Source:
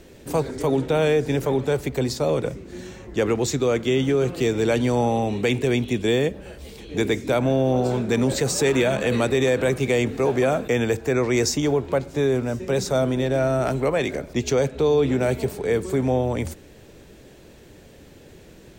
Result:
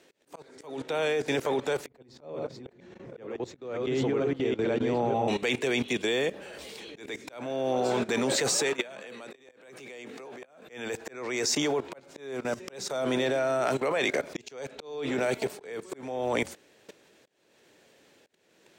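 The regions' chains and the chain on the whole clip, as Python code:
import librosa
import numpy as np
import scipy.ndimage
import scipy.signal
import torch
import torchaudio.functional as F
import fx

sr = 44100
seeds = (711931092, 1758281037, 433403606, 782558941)

y = fx.chain(x, sr, fx.reverse_delay(ms=467, wet_db=-1.0),
    fx.curve_eq(hz=(120.0, 3900.0, 9200.0), db=(0, -17, -27)), at=(1.87, 5.28))
y = fx.chain(y, sr, fx.highpass(hz=130.0, slope=24),
    fx.level_steps(step_db=18), at=(8.73, 10.62))
y = fx.weighting(y, sr, curve='A')
y = fx.level_steps(y, sr, step_db=17)
y = fx.auto_swell(y, sr, attack_ms=427.0)
y = F.gain(torch.from_numpy(y), 7.5).numpy()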